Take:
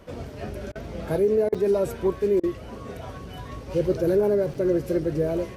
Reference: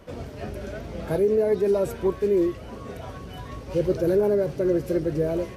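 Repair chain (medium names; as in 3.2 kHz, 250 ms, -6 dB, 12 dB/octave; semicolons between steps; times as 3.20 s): interpolate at 1.54/4.54 s, 5.6 ms; interpolate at 0.72/1.49/2.40 s, 33 ms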